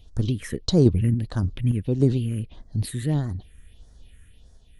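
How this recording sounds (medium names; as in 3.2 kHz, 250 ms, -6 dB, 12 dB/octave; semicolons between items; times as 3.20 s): phasing stages 4, 1.6 Hz, lowest notch 750–2700 Hz; random-step tremolo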